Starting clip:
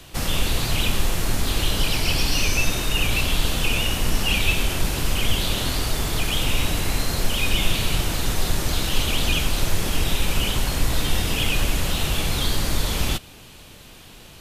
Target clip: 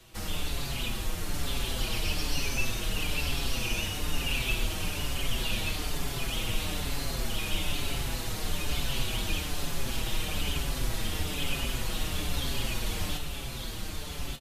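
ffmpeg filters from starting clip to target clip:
ffmpeg -i in.wav -filter_complex "[0:a]asplit=2[link_01][link_02];[link_02]aecho=0:1:1184|2368|3552|4736:0.668|0.174|0.0452|0.0117[link_03];[link_01][link_03]amix=inputs=2:normalize=0,asplit=2[link_04][link_05];[link_05]adelay=5.7,afreqshift=-1.1[link_06];[link_04][link_06]amix=inputs=2:normalize=1,volume=-7.5dB" out.wav

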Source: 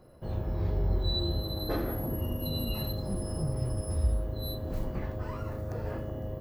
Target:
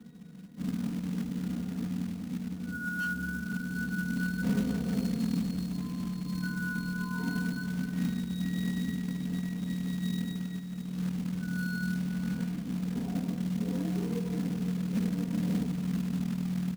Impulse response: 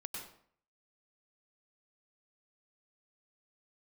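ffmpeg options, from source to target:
-filter_complex "[0:a]bandreject=frequency=50:width_type=h:width=6,bandreject=frequency=100:width_type=h:width=6,bandreject=frequency=150:width_type=h:width=6,bandreject=frequency=200:width_type=h:width=6,bandreject=frequency=250:width_type=h:width=6,asetrate=16846,aresample=44100,acompressor=threshold=-31dB:ratio=16,highpass=frequency=170:width_type=q:width=0.5412,highpass=frequency=170:width_type=q:width=1.307,lowpass=frequency=3400:width_type=q:width=0.5176,lowpass=frequency=3400:width_type=q:width=0.7071,lowpass=frequency=3400:width_type=q:width=1.932,afreqshift=-59,aeval=exprs='0.02*(abs(mod(val(0)/0.02+3,4)-2)-1)':channel_layout=same,equalizer=frequency=210:width=1.1:gain=14.5,aecho=1:1:4.2:0.93,acrusher=bits=4:mode=log:mix=0:aa=0.000001,asplit=2[link_01][link_02];[link_02]aecho=0:1:509:0.178[link_03];[link_01][link_03]amix=inputs=2:normalize=0"

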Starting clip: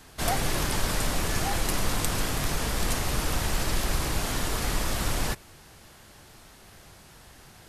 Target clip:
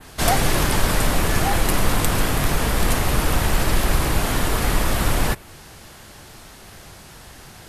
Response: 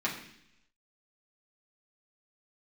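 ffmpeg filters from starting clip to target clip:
-af "adynamicequalizer=threshold=0.00447:dfrequency=5800:dqfactor=0.83:tfrequency=5800:tqfactor=0.83:attack=5:release=100:ratio=0.375:range=3:mode=cutabove:tftype=bell,volume=8.5dB"

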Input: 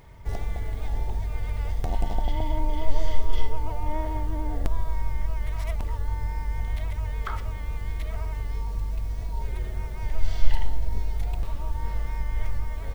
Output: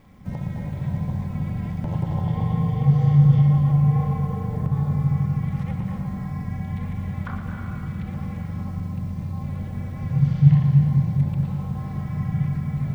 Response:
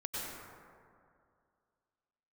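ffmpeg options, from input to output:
-filter_complex "[0:a]acrossover=split=2800[link_01][link_02];[link_02]acompressor=threshold=-55dB:ratio=4:attack=1:release=60[link_03];[link_01][link_03]amix=inputs=2:normalize=0,aeval=exprs='val(0)*sin(2*PI*140*n/s)':channel_layout=same,asplit=2[link_04][link_05];[1:a]atrim=start_sample=2205,adelay=115[link_06];[link_05][link_06]afir=irnorm=-1:irlink=0,volume=-4.5dB[link_07];[link_04][link_07]amix=inputs=2:normalize=0"

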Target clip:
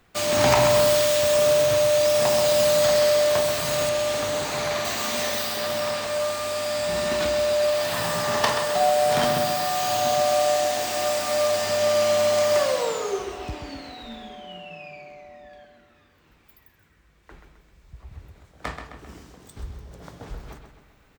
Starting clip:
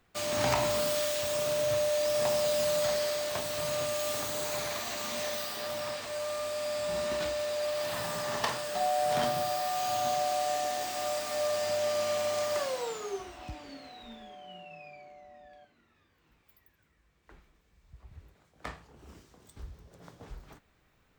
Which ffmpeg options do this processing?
ffmpeg -i in.wav -filter_complex "[0:a]asettb=1/sr,asplit=3[link_01][link_02][link_03];[link_01]atrim=end=3.894[link_04];[link_02]atrim=start=3.89:end=4.85,asetpts=PTS-STARTPTS,afade=type=in:duration=0.004:curve=qsin,afade=type=out:start_time=0.956:duration=0.004:curve=qsin,highshelf=frequency=8100:gain=-11.5[link_05];[link_03]atrim=start=4.846[link_06];[link_04][link_05]acrossfade=duration=0.004:curve1=hsin:curve2=qsin[link_07];[link_07][link_06]acrossfade=duration=0.004:curve1=qsin:curve2=hsin,asplit=2[link_08][link_09];[link_09]adelay=131,lowpass=frequency=4900:poles=1,volume=-7dB,asplit=2[link_10][link_11];[link_11]adelay=131,lowpass=frequency=4900:poles=1,volume=0.51,asplit=2[link_12][link_13];[link_13]adelay=131,lowpass=frequency=4900:poles=1,volume=0.51,asplit=2[link_14][link_15];[link_15]adelay=131,lowpass=frequency=4900:poles=1,volume=0.51,asplit=2[link_16][link_17];[link_17]adelay=131,lowpass=frequency=4900:poles=1,volume=0.51,asplit=2[link_18][link_19];[link_19]adelay=131,lowpass=frequency=4900:poles=1,volume=0.51[link_20];[link_08][link_10][link_12][link_14][link_16][link_18][link_20]amix=inputs=7:normalize=0,volume=8.5dB" out.wav

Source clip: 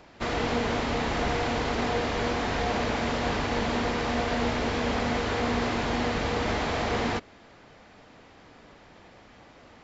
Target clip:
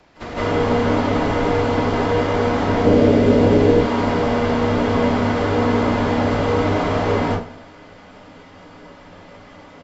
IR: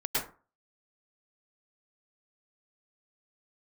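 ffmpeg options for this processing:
-filter_complex "[0:a]asettb=1/sr,asplit=3[link_01][link_02][link_03];[link_01]atrim=end=2.694[link_04];[link_02]atrim=start=2.69:end=3.64,asetpts=PTS-STARTPTS,afade=type=in:duration=0.004:curve=qsin,afade=type=out:start_time=0.946:duration=0.004:curve=qsin,lowshelf=frequency=640:width_type=q:width=1.5:gain=12.5[link_05];[link_03]atrim=start=3.636[link_06];[link_04][link_05]acrossfade=duration=0.004:curve1=hsin:curve2=qsin[link_07];[link_07][link_06]acrossfade=duration=0.004:curve1=qsin:curve2=hsin,acrossover=split=330|760|1800|4600[link_08][link_09][link_10][link_11][link_12];[link_08]acompressor=threshold=-27dB:ratio=4[link_13];[link_09]acompressor=threshold=-27dB:ratio=4[link_14];[link_10]acompressor=threshold=-36dB:ratio=4[link_15];[link_11]acompressor=threshold=-44dB:ratio=4[link_16];[link_12]acompressor=threshold=-53dB:ratio=4[link_17];[link_13][link_14][link_15][link_16][link_17]amix=inputs=5:normalize=0,aecho=1:1:96|192|288|384|480:0.141|0.0749|0.0397|0.021|0.0111[link_18];[1:a]atrim=start_sample=2205,afade=type=out:start_time=0.22:duration=0.01,atrim=end_sample=10143,asetrate=28665,aresample=44100[link_19];[link_18][link_19]afir=irnorm=-1:irlink=0,volume=-2dB"

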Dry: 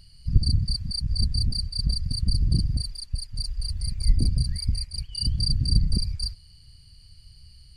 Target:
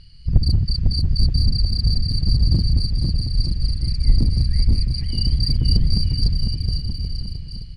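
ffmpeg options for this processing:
ffmpeg -i in.wav -filter_complex "[0:a]lowpass=4200,equalizer=frequency=770:width=1.4:gain=-7.5,asplit=2[link_01][link_02];[link_02]aeval=exprs='0.106*(abs(mod(val(0)/0.106+3,4)-2)-1)':channel_layout=same,volume=-9dB[link_03];[link_01][link_03]amix=inputs=2:normalize=0,aecho=1:1:500|925|1286|1593|1854:0.631|0.398|0.251|0.158|0.1,volume=3.5dB" out.wav

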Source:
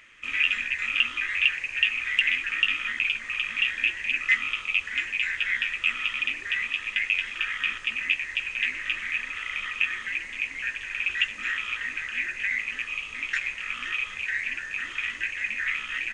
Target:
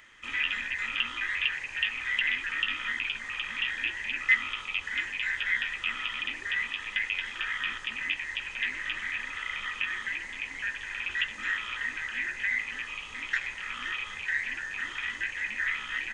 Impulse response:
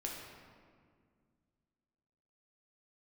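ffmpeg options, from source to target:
-filter_complex "[0:a]acrossover=split=4500[link_01][link_02];[link_02]acompressor=threshold=-50dB:ratio=4:attack=1:release=60[link_03];[link_01][link_03]amix=inputs=2:normalize=0,superequalizer=9b=1.78:12b=0.447"

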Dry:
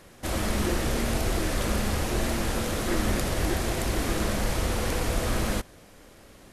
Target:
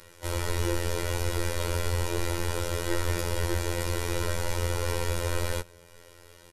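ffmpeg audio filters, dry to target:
ffmpeg -i in.wav -filter_complex "[0:a]aecho=1:1:2.1:0.94,acrossover=split=210|1300[link_01][link_02][link_03];[link_03]acompressor=mode=upward:threshold=-46dB:ratio=2.5[link_04];[link_01][link_02][link_04]amix=inputs=3:normalize=0,afftfilt=real='hypot(re,im)*cos(PI*b)':imag='0':win_size=2048:overlap=0.75,volume=-1.5dB" out.wav

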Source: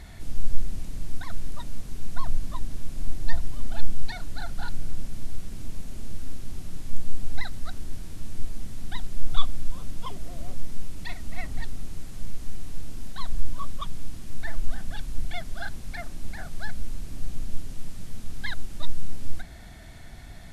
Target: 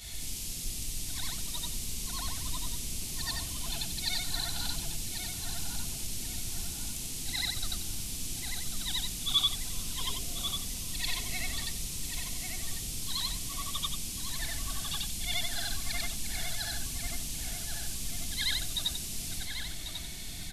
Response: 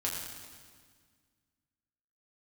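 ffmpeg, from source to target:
-filter_complex "[0:a]afftfilt=real='re':imag='-im':win_size=8192:overlap=0.75,afftfilt=real='re*lt(hypot(re,im),0.562)':imag='im*lt(hypot(re,im),0.562)':win_size=1024:overlap=0.75,acrossover=split=920[link_01][link_02];[link_02]aexciter=amount=2.6:drive=10:freq=2300[link_03];[link_01][link_03]amix=inputs=2:normalize=0,bandreject=frequency=580:width=12,asplit=2[link_04][link_05];[link_05]adelay=1093,lowpass=frequency=2000:poles=1,volume=-3.5dB,asplit=2[link_06][link_07];[link_07]adelay=1093,lowpass=frequency=2000:poles=1,volume=0.55,asplit=2[link_08][link_09];[link_09]adelay=1093,lowpass=frequency=2000:poles=1,volume=0.55,asplit=2[link_10][link_11];[link_11]adelay=1093,lowpass=frequency=2000:poles=1,volume=0.55,asplit=2[link_12][link_13];[link_13]adelay=1093,lowpass=frequency=2000:poles=1,volume=0.55,asplit=2[link_14][link_15];[link_15]adelay=1093,lowpass=frequency=2000:poles=1,volume=0.55,asplit=2[link_16][link_17];[link_17]adelay=1093,lowpass=frequency=2000:poles=1,volume=0.55,asplit=2[link_18][link_19];[link_19]adelay=1093,lowpass=frequency=2000:poles=1,volume=0.55[link_20];[link_04][link_06][link_08][link_10][link_12][link_14][link_16][link_18][link_20]amix=inputs=9:normalize=0"

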